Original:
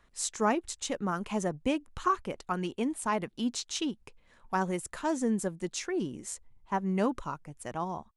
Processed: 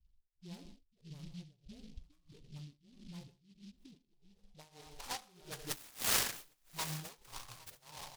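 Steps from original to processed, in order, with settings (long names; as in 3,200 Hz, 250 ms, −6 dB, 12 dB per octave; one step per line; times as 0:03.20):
sound drawn into the spectrogram fall, 0:05.61–0:06.14, 1,600–7,100 Hz −28 dBFS
guitar amp tone stack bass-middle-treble 10-0-10
all-pass dispersion highs, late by 69 ms, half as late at 310 Hz
in parallel at +0.5 dB: downward compressor 16 to 1, threshold −37 dBFS, peak gain reduction 11.5 dB
on the sum: reverb whose tail is shaped and stops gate 210 ms flat, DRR 6.5 dB
phase-vocoder pitch shift with formants kept −3.5 semitones
low-pass filter sweep 220 Hz → 6,900 Hz, 0:03.71–0:07.02
on a send: single-tap delay 810 ms −19 dB
on the sum: dynamic equaliser 610 Hz, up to −6 dB, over −45 dBFS, Q 2
amplitude tremolo 1.6 Hz, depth 94%
short delay modulated by noise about 3,700 Hz, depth 0.17 ms
level −2.5 dB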